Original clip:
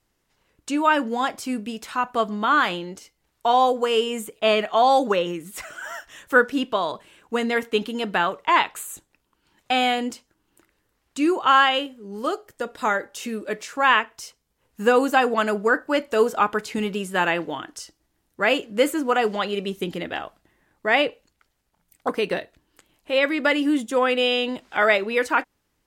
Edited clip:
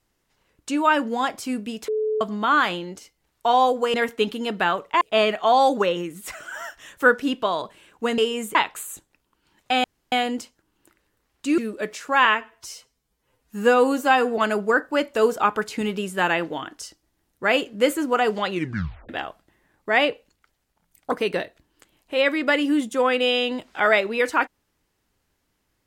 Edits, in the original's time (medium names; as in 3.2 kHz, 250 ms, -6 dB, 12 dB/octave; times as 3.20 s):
1.88–2.21 s: bleep 432 Hz -20.5 dBFS
3.94–4.31 s: swap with 7.48–8.55 s
9.84 s: insert room tone 0.28 s
11.30–13.26 s: delete
13.93–15.35 s: stretch 1.5×
19.46 s: tape stop 0.60 s